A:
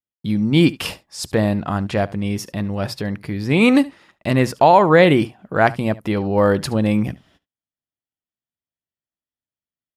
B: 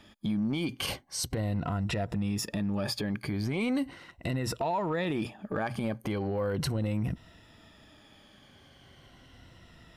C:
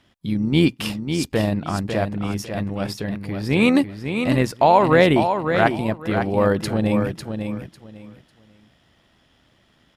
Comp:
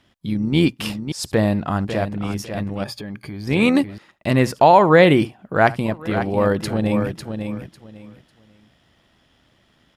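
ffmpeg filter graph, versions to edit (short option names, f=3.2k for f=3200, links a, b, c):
-filter_complex "[0:a]asplit=2[a][b];[2:a]asplit=4[c][d][e][f];[c]atrim=end=1.122[g];[a]atrim=start=1.118:end=1.852[h];[d]atrim=start=1.848:end=2.842[i];[1:a]atrim=start=2.838:end=3.472[j];[e]atrim=start=3.468:end=3.982[k];[b]atrim=start=3.978:end=5.862[l];[f]atrim=start=5.858[m];[g][h]acrossfade=d=0.004:c1=hsin:c2=hsin[n];[n][i]acrossfade=d=0.004:c1=hsin:c2=hsin[o];[o][j]acrossfade=d=0.004:c1=hsin:c2=hsin[p];[p][k]acrossfade=d=0.004:c1=hsin:c2=hsin[q];[q][l]acrossfade=d=0.004:c1=hsin:c2=hsin[r];[r][m]acrossfade=d=0.004:c1=hsin:c2=hsin"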